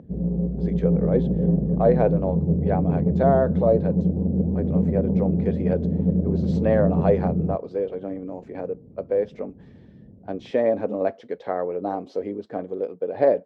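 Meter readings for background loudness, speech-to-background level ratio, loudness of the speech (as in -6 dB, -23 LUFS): -23.0 LUFS, -3.0 dB, -26.0 LUFS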